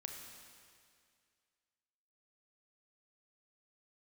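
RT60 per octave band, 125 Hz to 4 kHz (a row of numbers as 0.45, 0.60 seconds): 2.1, 2.2, 2.2, 2.1, 2.2, 2.1 seconds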